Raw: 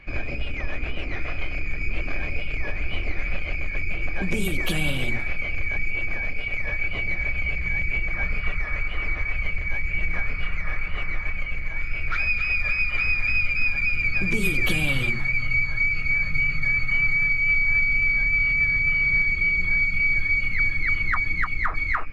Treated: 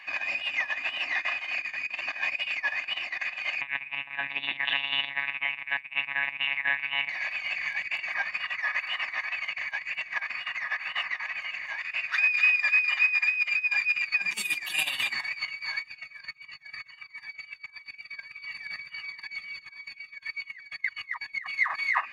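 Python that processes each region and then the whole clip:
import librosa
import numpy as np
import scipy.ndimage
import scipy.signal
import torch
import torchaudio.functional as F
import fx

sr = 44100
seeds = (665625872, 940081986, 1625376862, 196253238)

y = fx.chain(x, sr, fx.hum_notches(base_hz=60, count=8),
    fx.echo_single(ms=92, db=-21.5),
    fx.lpc_monotone(seeds[0], pitch_hz=140.0, order=10), at=(3.61, 7.09))
y = fx.chain(y, sr, fx.low_shelf(hz=400.0, db=5.5),
    fx.comb_cascade(direction='falling', hz=1.5), at=(15.82, 21.49))
y = fx.over_compress(y, sr, threshold_db=-24.0, ratio=-0.5)
y = scipy.signal.sosfilt(scipy.signal.butter(2, 1100.0, 'highpass', fs=sr, output='sos'), y)
y = y + 0.86 * np.pad(y, (int(1.1 * sr / 1000.0), 0))[:len(y)]
y = y * librosa.db_to_amplitude(2.5)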